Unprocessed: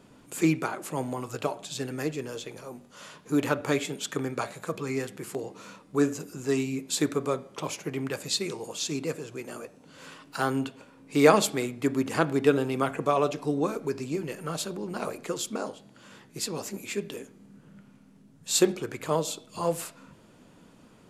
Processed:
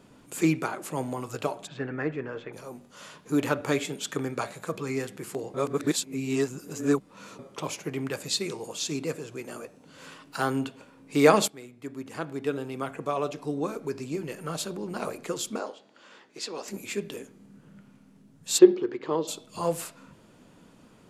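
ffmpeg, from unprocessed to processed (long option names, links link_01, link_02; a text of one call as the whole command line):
ffmpeg -i in.wav -filter_complex "[0:a]asplit=3[link_01][link_02][link_03];[link_01]afade=type=out:start_time=1.66:duration=0.02[link_04];[link_02]lowpass=frequency=1700:width_type=q:width=1.9,afade=type=in:start_time=1.66:duration=0.02,afade=type=out:start_time=2.52:duration=0.02[link_05];[link_03]afade=type=in:start_time=2.52:duration=0.02[link_06];[link_04][link_05][link_06]amix=inputs=3:normalize=0,asettb=1/sr,asplit=3[link_07][link_08][link_09];[link_07]atrim=end=15.594[link_10];[link_08]atrim=start=15.59:end=16.68,asetpts=PTS-STARTPTS,afade=type=in:duration=0.004:curve=qsin,afade=type=out:start_time=1.086:duration=0.004:curve=qsin,acrossover=split=290 6800:gain=0.0708 1 0.0794[link_11][link_12][link_13];[link_11][link_12][link_13]amix=inputs=3:normalize=0[link_14];[link_09]atrim=start=16.676[link_15];[link_10][link_14]acrossfade=duration=0.004:curve1=hsin:curve2=qsin[link_16];[link_16][link_15]acrossfade=duration=0.004:curve1=qsin:curve2=hsin,asplit=3[link_17][link_18][link_19];[link_17]afade=type=out:start_time=18.57:duration=0.02[link_20];[link_18]highpass=230,equalizer=frequency=360:width_type=q:width=4:gain=10,equalizer=frequency=650:width_type=q:width=4:gain=-8,equalizer=frequency=1400:width_type=q:width=4:gain=-7,equalizer=frequency=2400:width_type=q:width=4:gain=-8,equalizer=frequency=3600:width_type=q:width=4:gain=-4,lowpass=frequency=4100:width=0.5412,lowpass=frequency=4100:width=1.3066,afade=type=in:start_time=18.57:duration=0.02,afade=type=out:start_time=19.27:duration=0.02[link_21];[link_19]afade=type=in:start_time=19.27:duration=0.02[link_22];[link_20][link_21][link_22]amix=inputs=3:normalize=0,asplit=4[link_23][link_24][link_25][link_26];[link_23]atrim=end=5.542[link_27];[link_24]atrim=start=5.538:end=7.392,asetpts=PTS-STARTPTS,areverse[link_28];[link_25]atrim=start=7.388:end=11.48,asetpts=PTS-STARTPTS,afade=type=out:start_time=4.088:duration=0.004:curve=hsin:silence=0.141254[link_29];[link_26]atrim=start=11.48,asetpts=PTS-STARTPTS,afade=type=in:duration=3.23:silence=0.141254[link_30];[link_27][link_28]acrossfade=duration=0.004:curve1=hsin:curve2=hsin[link_31];[link_29][link_30]concat=n=2:v=0:a=1[link_32];[link_31][link_32]acrossfade=duration=0.004:curve1=hsin:curve2=hsin" out.wav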